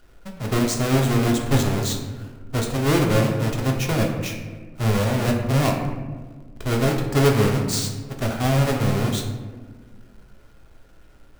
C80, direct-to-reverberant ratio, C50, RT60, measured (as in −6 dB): 6.5 dB, 0.5 dB, 5.0 dB, 1.5 s